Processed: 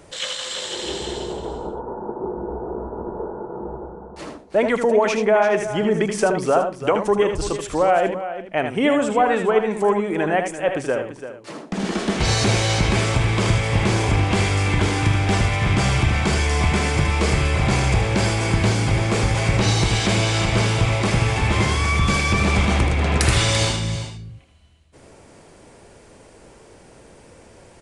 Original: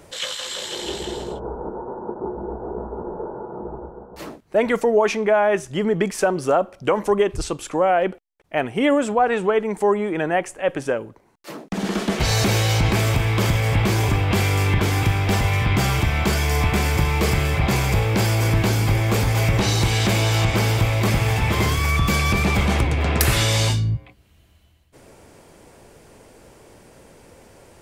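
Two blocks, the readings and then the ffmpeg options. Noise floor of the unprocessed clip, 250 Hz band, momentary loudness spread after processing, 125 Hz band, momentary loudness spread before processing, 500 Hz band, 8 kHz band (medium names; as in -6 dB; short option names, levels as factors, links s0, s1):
-54 dBFS, +1.0 dB, 12 LU, -0.5 dB, 12 LU, +1.0 dB, +1.0 dB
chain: -filter_complex "[0:a]asplit=2[s0][s1];[s1]aecho=0:1:78:0.447[s2];[s0][s2]amix=inputs=2:normalize=0,aresample=22050,aresample=44100,asplit=2[s3][s4];[s4]aecho=0:1:340:0.266[s5];[s3][s5]amix=inputs=2:normalize=0"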